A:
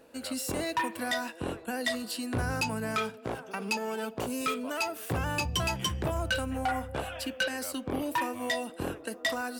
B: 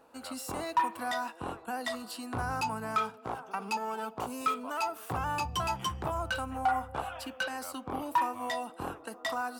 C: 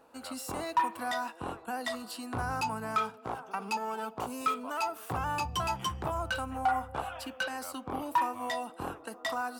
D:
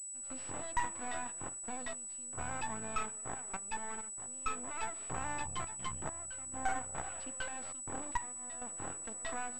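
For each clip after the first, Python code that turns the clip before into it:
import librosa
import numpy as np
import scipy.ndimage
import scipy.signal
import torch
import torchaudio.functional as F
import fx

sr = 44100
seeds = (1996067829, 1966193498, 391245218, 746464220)

y1 = fx.band_shelf(x, sr, hz=1000.0, db=10.0, octaves=1.1)
y1 = y1 * librosa.db_to_amplitude(-6.0)
y2 = y1
y3 = np.maximum(y2, 0.0)
y3 = fx.step_gate(y3, sr, bpm=101, pattern='..xxxxxxxx.xx.', floor_db=-12.0, edge_ms=4.5)
y3 = fx.pwm(y3, sr, carrier_hz=7900.0)
y3 = y3 * librosa.db_to_amplitude(-3.0)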